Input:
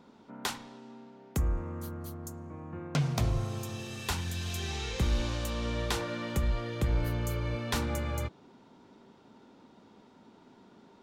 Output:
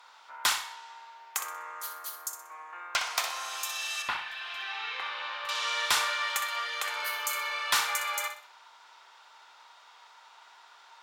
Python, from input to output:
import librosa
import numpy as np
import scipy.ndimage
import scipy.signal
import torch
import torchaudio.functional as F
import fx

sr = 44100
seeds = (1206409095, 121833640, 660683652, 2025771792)

y = scipy.signal.sosfilt(scipy.signal.butter(4, 970.0, 'highpass', fs=sr, output='sos'), x)
y = fx.fold_sine(y, sr, drive_db=7, ceiling_db=-17.5)
y = fx.air_absorb(y, sr, metres=420.0, at=(4.02, 5.49))
y = fx.echo_feedback(y, sr, ms=62, feedback_pct=34, wet_db=-9.0)
y = fx.rev_schroeder(y, sr, rt60_s=0.32, comb_ms=25, drr_db=12.5)